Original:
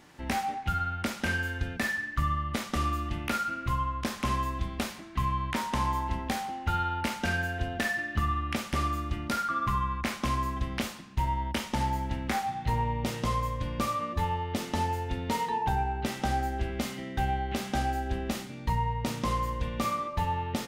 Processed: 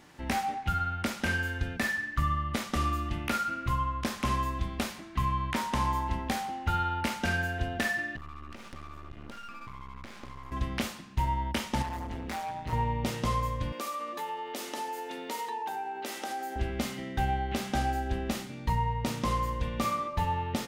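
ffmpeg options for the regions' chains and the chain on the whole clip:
-filter_complex "[0:a]asettb=1/sr,asplit=3[s0][s1][s2];[s0]atrim=end=8.164[s3];[s1]atrim=start=8.16:end=10.52,asetpts=PTS-STARTPTS,afade=t=in:d=0.004:c=qsin,afade=t=out:st=2.356:d=0.004:c=qsin,lowpass=f=3300:p=1,acompressor=threshold=0.0141:ratio=8:attack=3.2:release=140:knee=1:detection=peak,aeval=exprs='max(val(0),0)':c=same[s4];[s2]atrim=start=10.516[s5];[s3][s4]acrossfade=d=0.004:c1=hsin:c2=qsin[s6];[s6][s5]acrossfade=d=0.004:c1=qsin:c2=hsin,asettb=1/sr,asplit=3[s7][s8][s9];[s7]atrim=end=11.824[s10];[s8]atrim=start=11.82:end=12.73,asetpts=PTS-STARTPTS,afade=t=in:d=0.004:c=qsin,afade=t=out:st=0.906:d=0.004:c=qsin,asplit=2[s11][s12];[s12]adelay=27,volume=0.376[s13];[s11][s13]amix=inputs=2:normalize=0,atrim=end_sample=40131,tremolo=f=170:d=0.788,volume=37.6,asoftclip=hard,volume=0.0266[s14];[s9]atrim=start=12.726[s15];[s10][s14]acrossfade=d=0.004:c1=hsin:c2=qsin[s16];[s16][s15]acrossfade=d=0.004:c1=qsin:c2=hsin,asettb=1/sr,asplit=3[s17][s18][s19];[s17]atrim=end=13.724[s20];[s18]atrim=start=13.72:end=16.56,asetpts=PTS-STARTPTS,afade=t=in:d=0.004:c=qsin,afade=t=out:st=2.836:d=0.004:c=qsin,highpass=f=290:w=0.5412,highpass=f=290:w=1.3066,highshelf=f=7400:g=8,acompressor=threshold=0.02:ratio=2.5:attack=3.2:release=140:knee=1:detection=peak[s21];[s19]atrim=start=16.556[s22];[s20][s21]acrossfade=d=0.004:c1=hsin:c2=qsin[s23];[s23][s22]acrossfade=d=0.004:c1=qsin:c2=hsin"

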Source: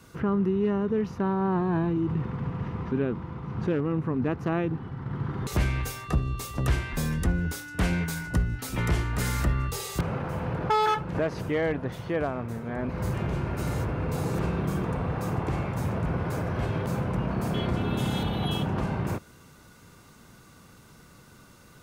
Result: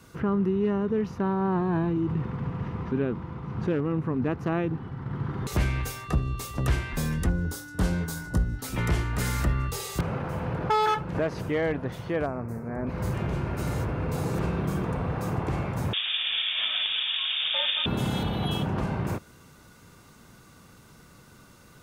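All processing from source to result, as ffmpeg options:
-filter_complex "[0:a]asettb=1/sr,asplit=3[s0][s1][s2];[s0]atrim=end=7.294[s3];[s1]atrim=start=7.29:end=8.64,asetpts=PTS-STARTPTS,afade=t=in:d=0.004:c=qsin,afade=t=out:st=1.346:d=0.004:c=qsin,equalizer=f=2300:t=o:w=0.82:g=-12,bandreject=f=700:w=21,asplit=2[s4][s5];[s5]adelay=21,volume=0.266[s6];[s4][s6]amix=inputs=2:normalize=0,atrim=end_sample=59535[s7];[s2]atrim=start=8.636[s8];[s3][s7]acrossfade=d=0.004:c1=hsin:c2=qsin[s9];[s9][s8]acrossfade=d=0.004:c1=qsin:c2=hsin,asettb=1/sr,asplit=3[s10][s11][s12];[s10]atrim=end=12.264[s13];[s11]atrim=start=12.26:end=12.87,asetpts=PTS-STARTPTS,afade=t=in:d=0.004:c=qsin,afade=t=out:st=0.606:d=0.004:c=qsin,asuperstop=centerf=3300:order=4:qfactor=1.8,equalizer=f=3500:w=0.51:g=-7[s14];[s12]atrim=start=12.866[s15];[s13][s14]acrossfade=d=0.004:c1=hsin:c2=qsin[s16];[s16][s15]acrossfade=d=0.004:c1=qsin:c2=hsin,asettb=1/sr,asplit=3[s17][s18][s19];[s17]atrim=end=15.934[s20];[s18]atrim=start=15.93:end=17.86,asetpts=PTS-STARTPTS,afade=t=in:d=0.004:c=qsin,afade=t=out:st=1.926:d=0.004:c=qsin,highpass=f=310:w=0.5412,highpass=f=310:w=1.3066,acontrast=68,lowpass=f=3300:t=q:w=0.5098,lowpass=f=3300:t=q:w=0.6013,lowpass=f=3300:t=q:w=0.9,lowpass=f=3300:t=q:w=2.563,afreqshift=-3900[s21];[s19]atrim=start=17.856[s22];[s20][s21]acrossfade=d=0.004:c1=hsin:c2=qsin[s23];[s23][s22]acrossfade=d=0.004:c1=qsin:c2=hsin"

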